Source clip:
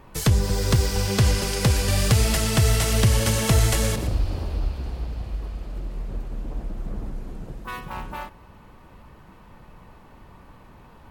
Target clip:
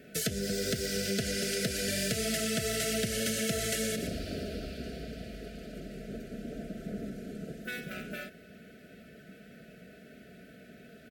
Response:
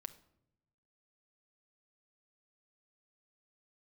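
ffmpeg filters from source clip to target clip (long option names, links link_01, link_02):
-af "highpass=160,aecho=1:1:4.6:0.5,acompressor=threshold=-30dB:ratio=3,asoftclip=type=tanh:threshold=-18dB,asuperstop=centerf=980:order=12:qfactor=1.5"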